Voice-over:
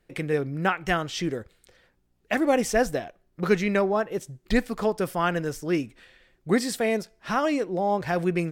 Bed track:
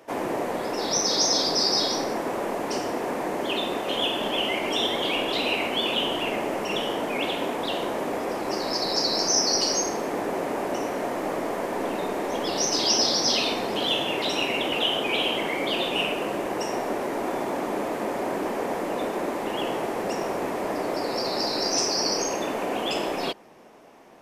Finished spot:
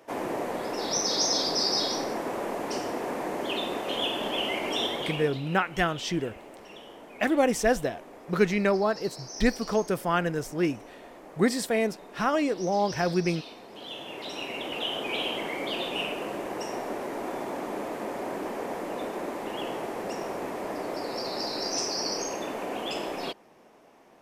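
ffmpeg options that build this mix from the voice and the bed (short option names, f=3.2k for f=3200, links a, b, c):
-filter_complex "[0:a]adelay=4900,volume=-1dB[a];[1:a]volume=10dB,afade=t=out:st=4.82:d=0.58:silence=0.16788,afade=t=in:st=13.69:d=1.48:silence=0.211349[b];[a][b]amix=inputs=2:normalize=0"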